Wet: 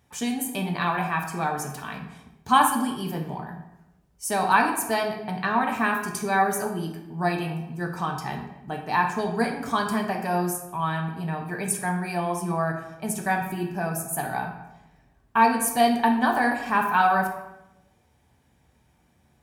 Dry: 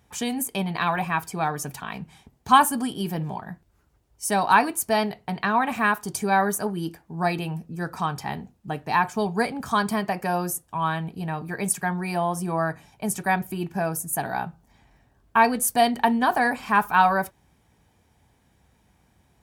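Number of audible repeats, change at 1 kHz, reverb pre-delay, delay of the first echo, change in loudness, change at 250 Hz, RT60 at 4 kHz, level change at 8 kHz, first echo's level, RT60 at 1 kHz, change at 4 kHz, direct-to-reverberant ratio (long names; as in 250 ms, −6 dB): no echo audible, −1.0 dB, 3 ms, no echo audible, −1.0 dB, 0.0 dB, 0.65 s, −1.5 dB, no echo audible, 0.85 s, −1.5 dB, 2.0 dB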